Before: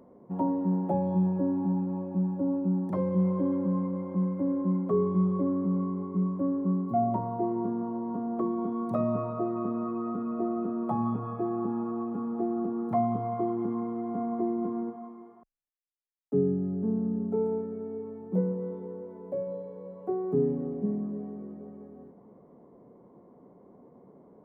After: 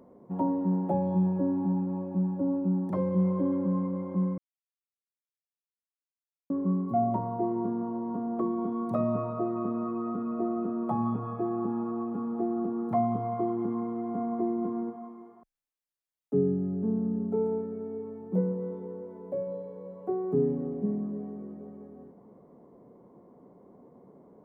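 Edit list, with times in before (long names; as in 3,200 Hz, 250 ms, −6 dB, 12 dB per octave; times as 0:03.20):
0:04.38–0:06.50: silence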